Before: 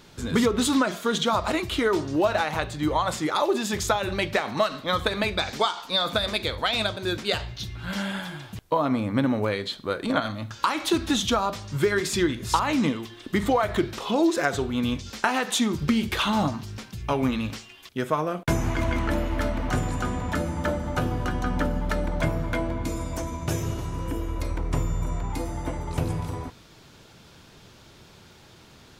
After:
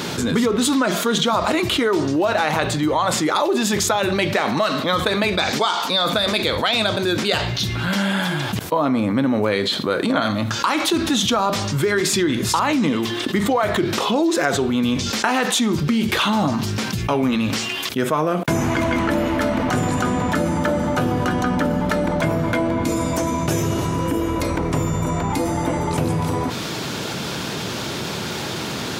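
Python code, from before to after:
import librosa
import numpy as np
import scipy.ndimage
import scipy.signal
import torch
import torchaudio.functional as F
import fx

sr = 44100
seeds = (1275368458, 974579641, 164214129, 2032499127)

y = scipy.signal.sosfilt(scipy.signal.butter(2, 170.0, 'highpass', fs=sr, output='sos'), x)
y = fx.low_shelf(y, sr, hz=220.0, db=5.0)
y = fx.env_flatten(y, sr, amount_pct=70)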